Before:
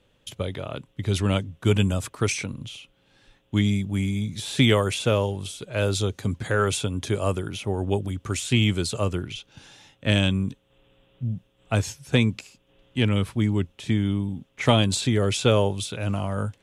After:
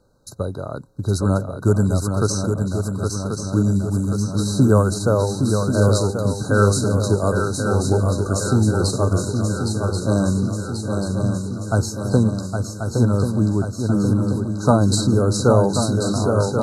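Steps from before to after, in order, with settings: brick-wall FIR band-stop 1.6–3.8 kHz; shuffle delay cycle 1085 ms, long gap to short 3:1, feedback 63%, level -5.5 dB; trim +4 dB

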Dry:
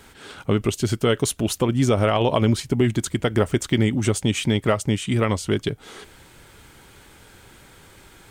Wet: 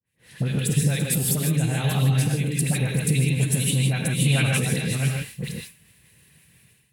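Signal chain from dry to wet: chunks repeated in reverse 469 ms, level -8 dB; high-pass 73 Hz; gated-style reverb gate 210 ms rising, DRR 1.5 dB; expander -35 dBFS; phase dispersion highs, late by 69 ms, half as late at 1.4 kHz; compression, threshold -20 dBFS, peak gain reduction 8.5 dB; graphic EQ 125/250/500/1000/2000/4000/8000 Hz +8/-10/-9/-11/+5/-7/+7 dB; level rider gain up to 13 dB; tape speed +20%; time-frequency box 4.26–4.58 s, 460–4200 Hz +6 dB; trim -7.5 dB

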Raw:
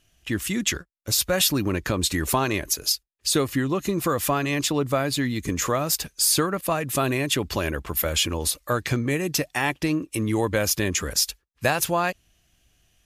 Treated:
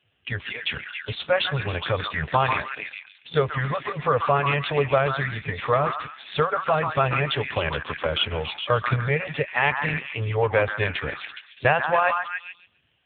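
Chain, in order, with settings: 2.09–3.91 s: de-esser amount 45%; FFT band-reject 170–400 Hz; on a send: repeats whose band climbs or falls 139 ms, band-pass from 1.2 kHz, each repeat 0.7 oct, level -2 dB; on the sum: trim +4.5 dB; AMR-NB 5.9 kbps 8 kHz

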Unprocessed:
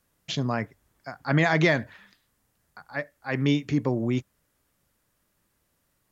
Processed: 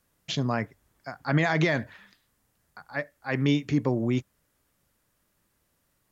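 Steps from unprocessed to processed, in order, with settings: peak limiter -13 dBFS, peak gain reduction 4.5 dB

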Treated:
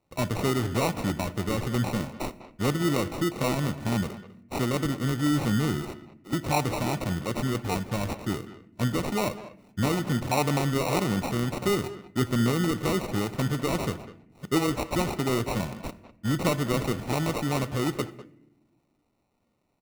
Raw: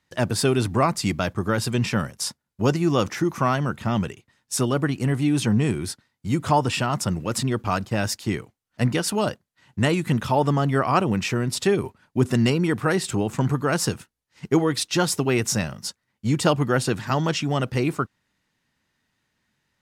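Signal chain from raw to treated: CVSD coder 64 kbps; 5.82–6.33 s: elliptic band-pass 300–5800 Hz; in parallel at -2 dB: peak limiter -18 dBFS, peak gain reduction 10.5 dB; on the sum: sample-and-hold 27×; speakerphone echo 200 ms, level -13 dB; on a send at -15 dB: reverberation RT60 0.95 s, pre-delay 3 ms; on the sum: trim -7.5 dB

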